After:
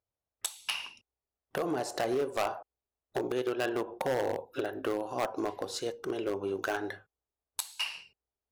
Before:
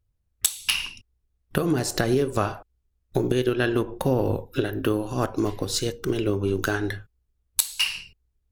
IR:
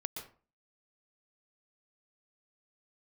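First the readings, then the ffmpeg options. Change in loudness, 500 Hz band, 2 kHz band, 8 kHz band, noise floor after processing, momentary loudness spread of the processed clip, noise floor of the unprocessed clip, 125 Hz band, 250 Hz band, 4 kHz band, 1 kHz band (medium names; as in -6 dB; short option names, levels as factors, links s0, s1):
-8.5 dB, -6.5 dB, -8.0 dB, -12.5 dB, under -85 dBFS, 8 LU, -74 dBFS, -20.0 dB, -11.0 dB, -10.0 dB, -3.5 dB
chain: -af "bandpass=f=710:t=q:w=1.7:csg=0,volume=16.8,asoftclip=hard,volume=0.0596,crystalizer=i=4:c=0"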